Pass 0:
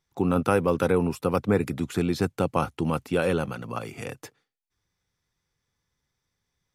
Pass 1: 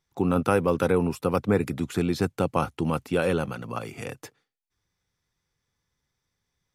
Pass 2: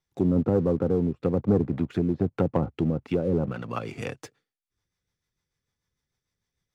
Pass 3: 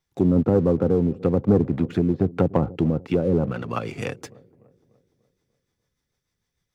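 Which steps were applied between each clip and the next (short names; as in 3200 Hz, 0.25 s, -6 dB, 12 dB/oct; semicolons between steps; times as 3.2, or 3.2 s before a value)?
nothing audible
treble ducked by the level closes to 450 Hz, closed at -20 dBFS; rotary speaker horn 1.1 Hz, later 6.7 Hz, at 2.8; sample leveller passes 1
dark delay 0.295 s, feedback 47%, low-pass 680 Hz, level -20.5 dB; gain +4 dB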